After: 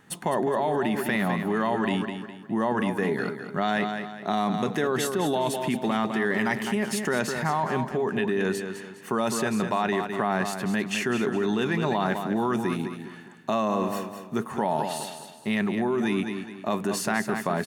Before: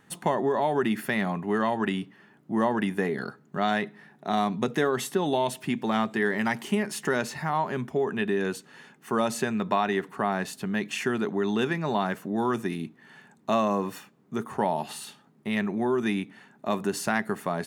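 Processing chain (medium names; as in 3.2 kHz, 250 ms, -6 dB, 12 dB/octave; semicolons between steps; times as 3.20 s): feedback delay 206 ms, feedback 37%, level -9 dB; in parallel at -1.5 dB: compressor with a negative ratio -27 dBFS, ratio -0.5; on the sum: trim -3.5 dB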